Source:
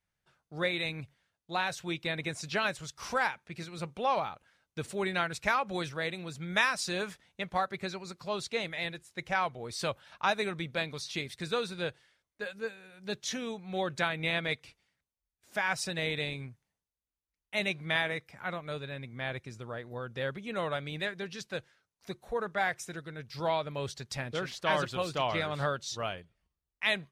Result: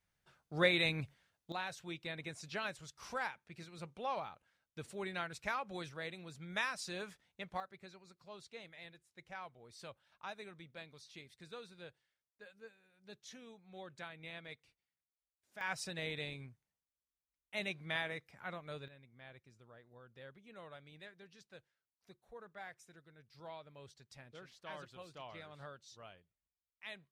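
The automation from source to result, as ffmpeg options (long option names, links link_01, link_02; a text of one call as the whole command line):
ffmpeg -i in.wav -af "asetnsamples=nb_out_samples=441:pad=0,asendcmd='1.52 volume volume -10dB;7.6 volume volume -18dB;15.61 volume volume -8.5dB;18.88 volume volume -19.5dB',volume=1dB" out.wav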